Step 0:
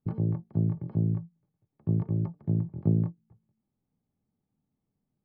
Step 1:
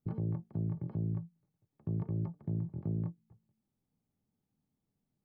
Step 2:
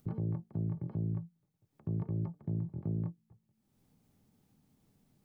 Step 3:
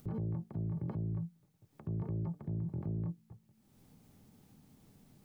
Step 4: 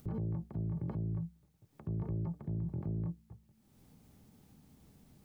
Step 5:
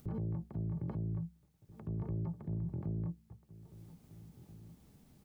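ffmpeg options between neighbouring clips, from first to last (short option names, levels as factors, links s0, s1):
-af "alimiter=level_in=1.12:limit=0.0631:level=0:latency=1:release=30,volume=0.891,volume=0.75"
-af "acompressor=mode=upward:threshold=0.00158:ratio=2.5"
-af "alimiter=level_in=5.62:limit=0.0631:level=0:latency=1:release=26,volume=0.178,volume=2.51"
-af "equalizer=f=65:w=7.7:g=14.5"
-filter_complex "[0:a]asplit=2[s0][s1];[s1]adelay=1633,volume=0.141,highshelf=f=4000:g=-36.7[s2];[s0][s2]amix=inputs=2:normalize=0,volume=0.891"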